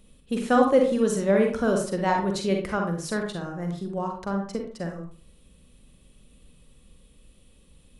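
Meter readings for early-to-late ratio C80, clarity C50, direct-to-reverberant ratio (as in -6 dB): 9.5 dB, 4.0 dB, 2.0 dB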